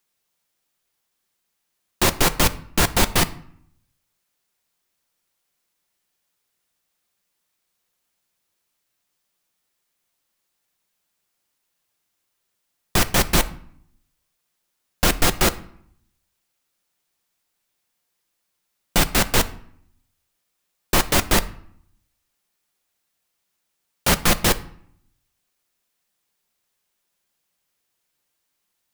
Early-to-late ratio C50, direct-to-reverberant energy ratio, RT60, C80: 17.5 dB, 10.0 dB, 0.65 s, 20.5 dB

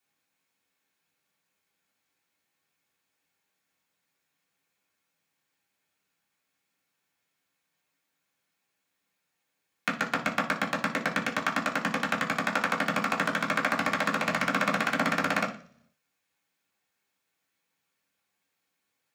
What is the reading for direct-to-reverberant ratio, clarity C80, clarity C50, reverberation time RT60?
-7.5 dB, 15.5 dB, 10.5 dB, 0.50 s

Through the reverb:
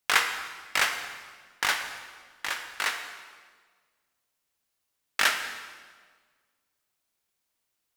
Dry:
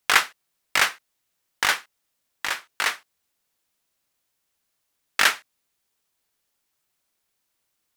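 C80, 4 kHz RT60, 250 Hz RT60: 8.5 dB, 1.3 s, 1.7 s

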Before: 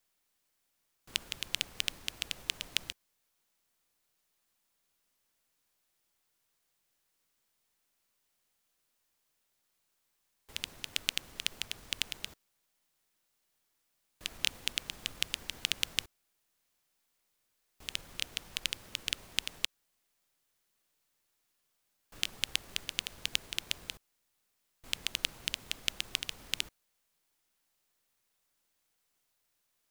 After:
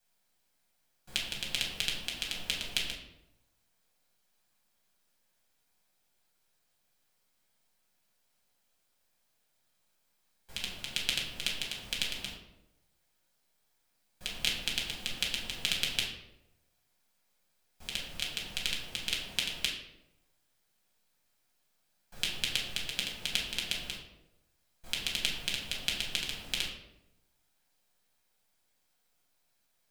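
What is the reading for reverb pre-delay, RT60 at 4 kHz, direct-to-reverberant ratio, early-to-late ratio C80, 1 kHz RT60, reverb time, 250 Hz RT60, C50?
5 ms, 0.55 s, -3.5 dB, 8.0 dB, 0.80 s, 0.90 s, 1.0 s, 5.0 dB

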